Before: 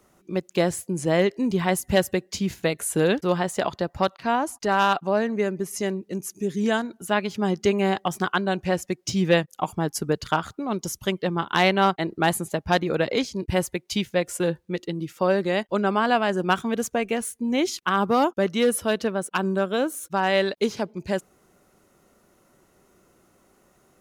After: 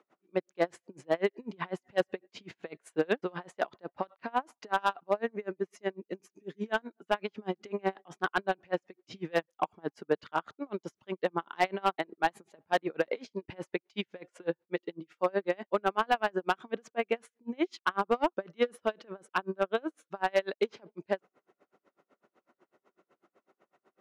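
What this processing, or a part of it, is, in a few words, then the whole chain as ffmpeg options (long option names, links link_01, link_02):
helicopter radio: -af "highpass=310,lowpass=2600,aeval=exprs='val(0)*pow(10,-35*(0.5-0.5*cos(2*PI*8*n/s))/20)':channel_layout=same,asoftclip=type=hard:threshold=-16.5dB"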